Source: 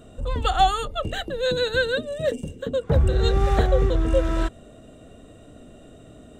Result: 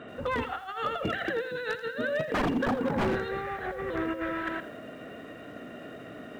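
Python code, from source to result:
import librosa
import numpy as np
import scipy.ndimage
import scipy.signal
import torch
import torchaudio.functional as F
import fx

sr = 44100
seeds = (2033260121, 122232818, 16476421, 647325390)

y = fx.bandpass_edges(x, sr, low_hz=180.0, high_hz=2400.0)
y = fx.peak_eq(y, sr, hz=1900.0, db=13.5, octaves=1.3)
y = y + 10.0 ** (-14.0 / 20.0) * np.pad(y, (int(120 * sr / 1000.0), 0))[:len(y)]
y = fx.over_compress(y, sr, threshold_db=-30.0, ratio=-1.0)
y = fx.small_body(y, sr, hz=(240.0, 870.0), ring_ms=25, db=16, at=(2.34, 3.16))
y = 10.0 ** (-18.0 / 20.0) * (np.abs((y / 10.0 ** (-18.0 / 20.0) + 3.0) % 4.0 - 2.0) - 1.0)
y = fx.echo_crushed(y, sr, ms=83, feedback_pct=35, bits=8, wet_db=-13.0)
y = F.gain(torch.from_numpy(y), -3.5).numpy()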